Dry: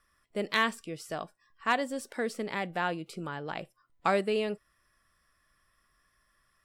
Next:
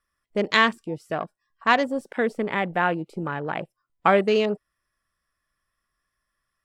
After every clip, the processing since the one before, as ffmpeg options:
-af "afwtdn=0.00708,volume=8.5dB"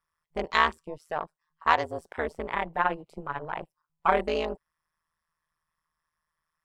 -af "tremolo=f=160:d=0.974,equalizer=f=100:t=o:w=0.67:g=-3,equalizer=f=250:t=o:w=0.67:g=-8,equalizer=f=1k:t=o:w=0.67:g=7,volume=-2.5dB"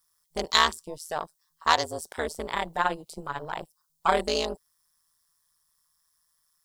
-af "aexciter=amount=8.7:drive=3.3:freq=3.6k"

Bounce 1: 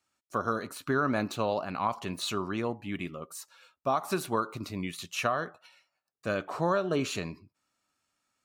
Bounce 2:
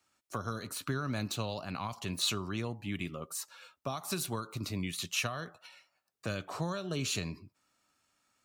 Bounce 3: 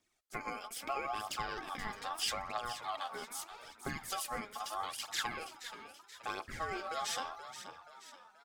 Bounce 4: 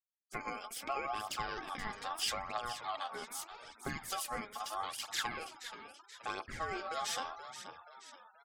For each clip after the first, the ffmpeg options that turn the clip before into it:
-filter_complex "[0:a]acrossover=split=150|3000[a][b][c];[b]acompressor=threshold=-43dB:ratio=4[d];[a][d][c]amix=inputs=3:normalize=0,volume=4dB"
-filter_complex "[0:a]aeval=exprs='val(0)*sin(2*PI*960*n/s)':c=same,asplit=6[a][b][c][d][e][f];[b]adelay=478,afreqshift=53,volume=-11dB[g];[c]adelay=956,afreqshift=106,volume=-17.4dB[h];[d]adelay=1434,afreqshift=159,volume=-23.8dB[i];[e]adelay=1912,afreqshift=212,volume=-30.1dB[j];[f]adelay=2390,afreqshift=265,volume=-36.5dB[k];[a][g][h][i][j][k]amix=inputs=6:normalize=0,aphaser=in_gain=1:out_gain=1:delay=5:decay=0.53:speed=0.78:type=triangular,volume=-2.5dB"
-af "afftfilt=real='re*gte(hypot(re,im),0.000794)':imag='im*gte(hypot(re,im),0.000794)':win_size=1024:overlap=0.75"

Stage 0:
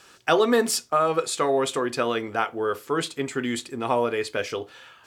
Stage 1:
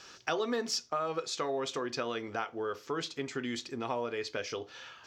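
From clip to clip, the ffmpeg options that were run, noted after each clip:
-af "acompressor=threshold=-37dB:ratio=2,highshelf=f=7.4k:t=q:w=3:g=-9,volume=-1.5dB"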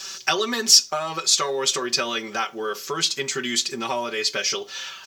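-af "aecho=1:1:5.2:0.92,crystalizer=i=6.5:c=0,volume=3dB"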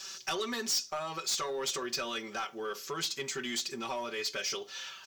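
-af "asoftclip=type=tanh:threshold=-18.5dB,volume=-8.5dB"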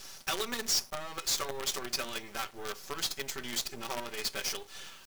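-af "acrusher=bits=6:dc=4:mix=0:aa=0.000001"

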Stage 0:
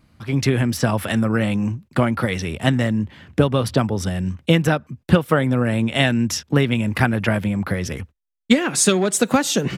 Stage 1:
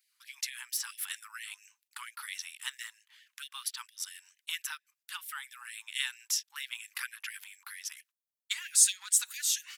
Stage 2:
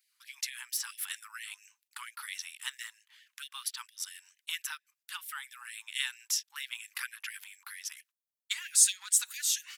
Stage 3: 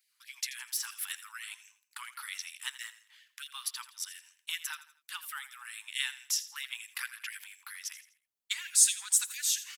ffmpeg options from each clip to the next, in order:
-af "aderivative,afftfilt=real='re*gte(b*sr/1024,800*pow(1700/800,0.5+0.5*sin(2*PI*4.4*pts/sr)))':imag='im*gte(b*sr/1024,800*pow(1700/800,0.5+0.5*sin(2*PI*4.4*pts/sr)))':win_size=1024:overlap=0.75,volume=-3.5dB"
-af anull
-af "aecho=1:1:83|166|249:0.178|0.0676|0.0257"

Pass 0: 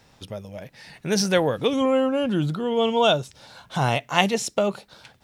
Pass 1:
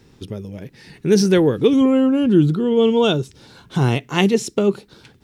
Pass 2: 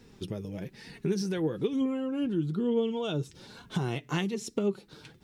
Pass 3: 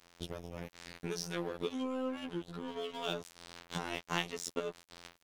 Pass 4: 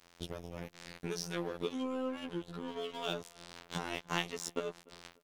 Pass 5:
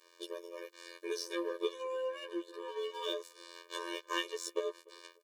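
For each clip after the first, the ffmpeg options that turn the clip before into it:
-af "lowshelf=f=490:t=q:w=3:g=7"
-af "acompressor=threshold=-23dB:ratio=10,flanger=delay=4:depth=2.9:regen=44:speed=1.1:shape=triangular"
-filter_complex "[0:a]acrossover=split=510[a][b];[a]acompressor=threshold=-39dB:ratio=16[c];[c][b]amix=inputs=2:normalize=0,afftfilt=real='hypot(re,im)*cos(PI*b)':imag='0':win_size=2048:overlap=0.75,aeval=exprs='sgn(val(0))*max(abs(val(0))-0.00282,0)':c=same,volume=4dB"
-filter_complex "[0:a]asplit=2[a][b];[b]adelay=296,lowpass=f=1.8k:p=1,volume=-23.5dB,asplit=2[c][d];[d]adelay=296,lowpass=f=1.8k:p=1,volume=0.32[e];[a][c][e]amix=inputs=3:normalize=0"
-af "afftfilt=real='re*eq(mod(floor(b*sr/1024/310),2),1)':imag='im*eq(mod(floor(b*sr/1024/310),2),1)':win_size=1024:overlap=0.75,volume=3dB"

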